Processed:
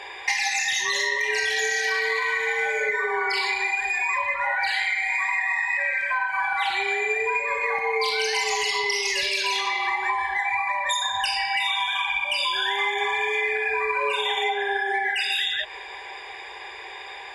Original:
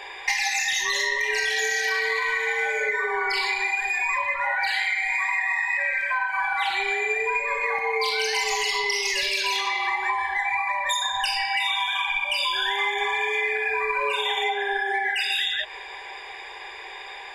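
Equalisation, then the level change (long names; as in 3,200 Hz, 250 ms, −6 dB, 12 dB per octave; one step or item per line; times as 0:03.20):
high-pass filter 43 Hz
linear-phase brick-wall low-pass 12,000 Hz
low-shelf EQ 360 Hz +3 dB
0.0 dB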